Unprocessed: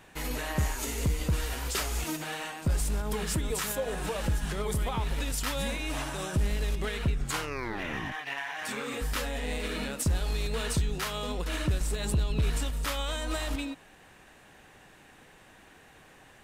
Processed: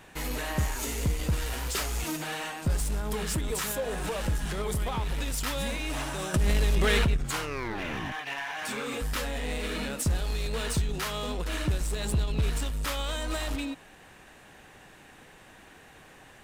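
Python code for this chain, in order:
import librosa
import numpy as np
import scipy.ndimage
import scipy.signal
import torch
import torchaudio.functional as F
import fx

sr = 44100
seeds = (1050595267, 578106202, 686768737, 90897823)

p1 = fx.notch(x, sr, hz=1900.0, q=13.0, at=(7.73, 9.05))
p2 = 10.0 ** (-34.0 / 20.0) * (np.abs((p1 / 10.0 ** (-34.0 / 20.0) + 3.0) % 4.0 - 2.0) - 1.0)
p3 = p1 + F.gain(torch.from_numpy(p2), -8.5).numpy()
y = fx.env_flatten(p3, sr, amount_pct=100, at=(6.34, 7.17))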